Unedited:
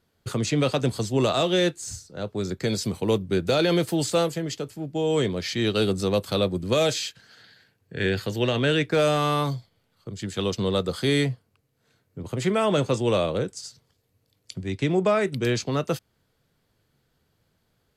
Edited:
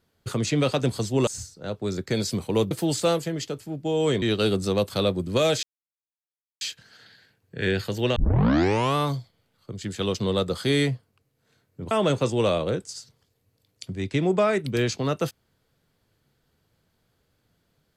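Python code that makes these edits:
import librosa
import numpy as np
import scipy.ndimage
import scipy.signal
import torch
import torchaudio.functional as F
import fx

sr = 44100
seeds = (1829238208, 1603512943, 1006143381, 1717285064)

y = fx.edit(x, sr, fx.cut(start_s=1.27, length_s=0.53),
    fx.cut(start_s=3.24, length_s=0.57),
    fx.cut(start_s=5.32, length_s=0.26),
    fx.insert_silence(at_s=6.99, length_s=0.98),
    fx.tape_start(start_s=8.54, length_s=0.8),
    fx.cut(start_s=12.29, length_s=0.3), tone=tone)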